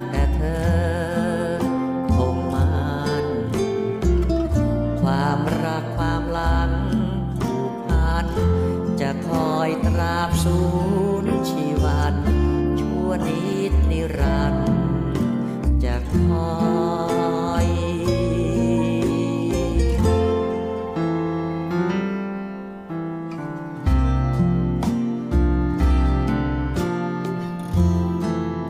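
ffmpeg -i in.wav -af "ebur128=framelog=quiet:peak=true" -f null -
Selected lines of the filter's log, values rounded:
Integrated loudness:
  I:         -21.8 LUFS
  Threshold: -31.8 LUFS
Loudness range:
  LRA:         2.5 LU
  Threshold: -41.8 LUFS
  LRA low:   -23.4 LUFS
  LRA high:  -20.9 LUFS
True peak:
  Peak:       -8.4 dBFS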